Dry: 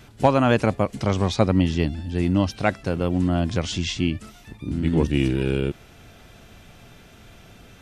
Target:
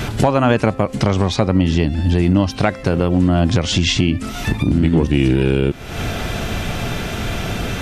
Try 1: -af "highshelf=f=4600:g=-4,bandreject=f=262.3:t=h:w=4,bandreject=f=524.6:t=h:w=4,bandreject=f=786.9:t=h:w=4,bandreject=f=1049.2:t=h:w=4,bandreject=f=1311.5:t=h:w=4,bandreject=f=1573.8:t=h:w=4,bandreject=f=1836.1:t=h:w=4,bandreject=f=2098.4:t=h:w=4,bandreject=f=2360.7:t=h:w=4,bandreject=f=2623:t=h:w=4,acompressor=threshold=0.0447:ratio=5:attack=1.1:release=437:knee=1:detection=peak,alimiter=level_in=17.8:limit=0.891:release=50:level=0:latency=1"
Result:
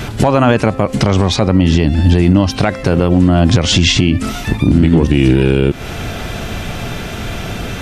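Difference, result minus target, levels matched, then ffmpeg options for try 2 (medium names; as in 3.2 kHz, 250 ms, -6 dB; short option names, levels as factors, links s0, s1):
compression: peak gain reduction -7 dB
-af "highshelf=f=4600:g=-4,bandreject=f=262.3:t=h:w=4,bandreject=f=524.6:t=h:w=4,bandreject=f=786.9:t=h:w=4,bandreject=f=1049.2:t=h:w=4,bandreject=f=1311.5:t=h:w=4,bandreject=f=1573.8:t=h:w=4,bandreject=f=1836.1:t=h:w=4,bandreject=f=2098.4:t=h:w=4,bandreject=f=2360.7:t=h:w=4,bandreject=f=2623:t=h:w=4,acompressor=threshold=0.0168:ratio=5:attack=1.1:release=437:knee=1:detection=peak,alimiter=level_in=17.8:limit=0.891:release=50:level=0:latency=1"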